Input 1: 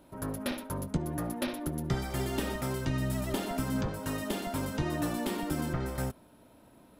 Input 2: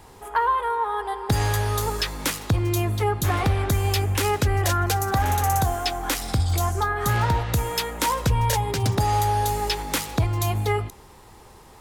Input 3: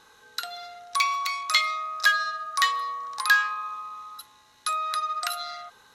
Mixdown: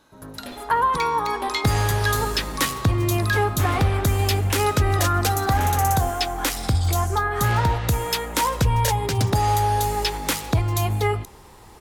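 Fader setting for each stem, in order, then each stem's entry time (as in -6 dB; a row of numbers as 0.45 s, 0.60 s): -4.0 dB, +1.5 dB, -5.5 dB; 0.00 s, 0.35 s, 0.00 s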